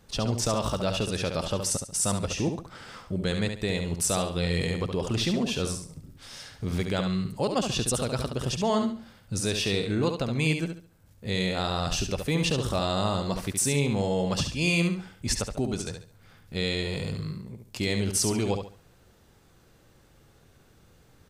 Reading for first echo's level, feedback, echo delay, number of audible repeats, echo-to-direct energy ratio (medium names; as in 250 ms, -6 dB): -6.5 dB, 29%, 70 ms, 3, -6.0 dB